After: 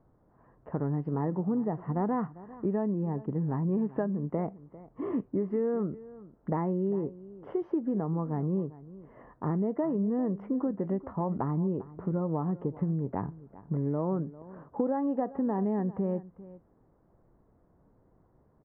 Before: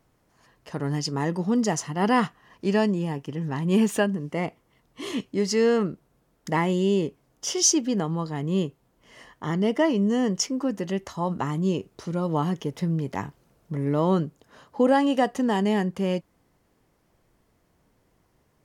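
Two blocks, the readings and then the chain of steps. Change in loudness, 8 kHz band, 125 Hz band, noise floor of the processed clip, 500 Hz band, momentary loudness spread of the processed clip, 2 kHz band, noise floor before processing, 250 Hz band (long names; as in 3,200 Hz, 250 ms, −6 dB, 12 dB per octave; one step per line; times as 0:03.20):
−6.5 dB, below −40 dB, −3.5 dB, −66 dBFS, −6.5 dB, 11 LU, below −15 dB, −67 dBFS, −5.0 dB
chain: Bessel low-pass filter 900 Hz, order 6
downward compressor, threshold −29 dBFS, peak gain reduction 12.5 dB
single-tap delay 398 ms −18 dB
level +2.5 dB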